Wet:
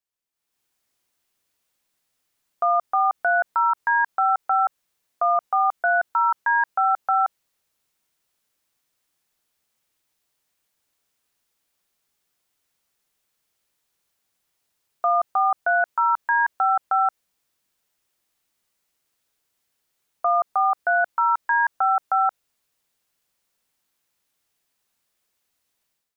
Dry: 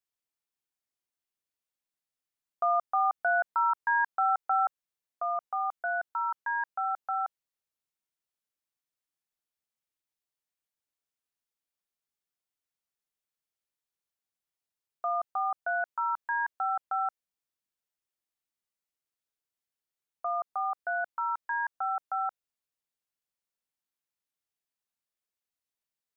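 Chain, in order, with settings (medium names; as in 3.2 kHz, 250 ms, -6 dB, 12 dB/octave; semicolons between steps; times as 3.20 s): peak limiter -29 dBFS, peak gain reduction 10 dB; level rider gain up to 16 dB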